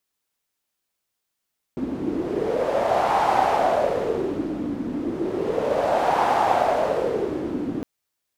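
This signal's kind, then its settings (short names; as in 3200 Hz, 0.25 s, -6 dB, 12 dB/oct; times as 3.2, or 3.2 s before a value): wind-like swept noise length 6.06 s, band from 270 Hz, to 810 Hz, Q 4.6, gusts 2, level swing 8.5 dB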